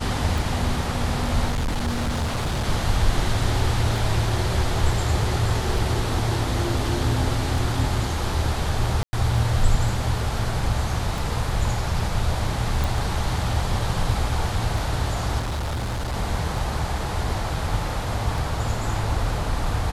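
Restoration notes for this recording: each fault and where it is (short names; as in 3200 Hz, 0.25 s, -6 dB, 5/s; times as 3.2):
tick
1.5–2.66 clipped -20.5 dBFS
9.03–9.13 gap 0.1 s
12.84 pop
15.39–16.15 clipped -23.5 dBFS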